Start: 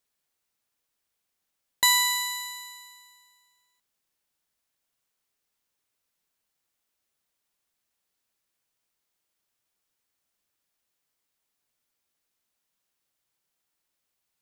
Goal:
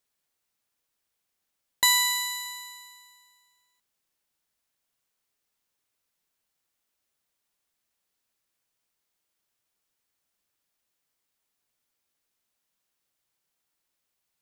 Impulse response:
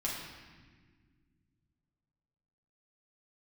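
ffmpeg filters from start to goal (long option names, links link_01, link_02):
-filter_complex "[0:a]asettb=1/sr,asplit=3[link_01][link_02][link_03];[link_01]atrim=end=1.844[link_04];[link_02]atrim=start=1.84:end=2.46,asetpts=PTS-STARTPTS,afade=type=in:duration=0.004:curve=qsin,afade=type=out:start_time=0.616:duration=0.004:curve=qsin,lowshelf=frequency=470:gain=-11[link_05];[link_03]atrim=start=2.456[link_06];[link_04][link_05]acrossfade=duration=0.004:curve1=hsin:curve2=qsin[link_07];[link_07][link_06]acrossfade=duration=0.004:curve1=qsin:curve2=hsin"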